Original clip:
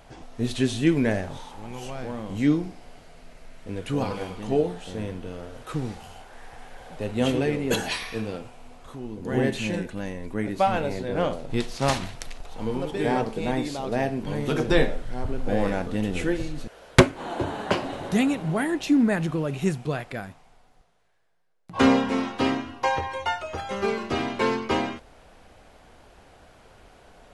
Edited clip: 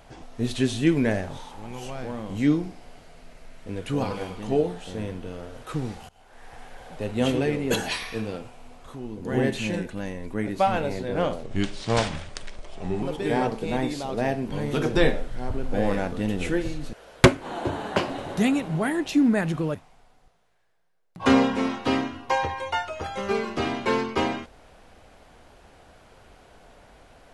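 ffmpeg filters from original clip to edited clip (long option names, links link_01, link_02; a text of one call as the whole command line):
ffmpeg -i in.wav -filter_complex "[0:a]asplit=5[link_01][link_02][link_03][link_04][link_05];[link_01]atrim=end=6.09,asetpts=PTS-STARTPTS,afade=type=out:start_time=6.086:duration=0.004:curve=hsin:silence=0.0668344[link_06];[link_02]atrim=start=6.09:end=11.434,asetpts=PTS-STARTPTS,afade=type=in:duration=0.46:silence=0.0668344[link_07];[link_03]atrim=start=11.43:end=12.77,asetpts=PTS-STARTPTS,asetrate=37044,aresample=44100[link_08];[link_04]atrim=start=12.766:end=19.492[link_09];[link_05]atrim=start=20.278[link_10];[link_06][link_07]concat=n=2:v=0:a=1[link_11];[link_11][link_08]acrossfade=duration=0.004:curve1=hsin:curve2=hsin[link_12];[link_12][link_09]acrossfade=duration=0.004:curve1=hsin:curve2=hsin[link_13];[link_13][link_10]acrossfade=duration=0.004:curve1=hsin:curve2=hsin" out.wav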